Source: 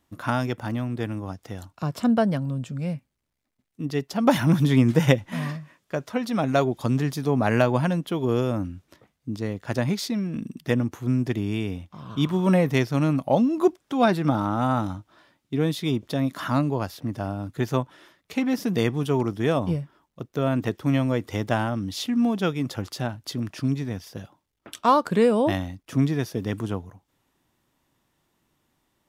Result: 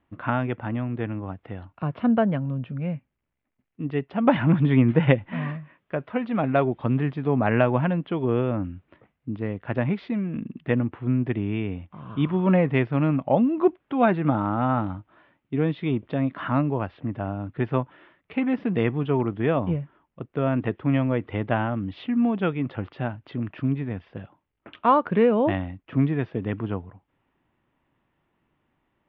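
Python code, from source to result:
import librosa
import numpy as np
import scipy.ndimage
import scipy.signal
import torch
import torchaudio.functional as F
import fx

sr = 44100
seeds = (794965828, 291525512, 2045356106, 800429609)

y = scipy.signal.sosfilt(scipy.signal.butter(6, 2900.0, 'lowpass', fs=sr, output='sos'), x)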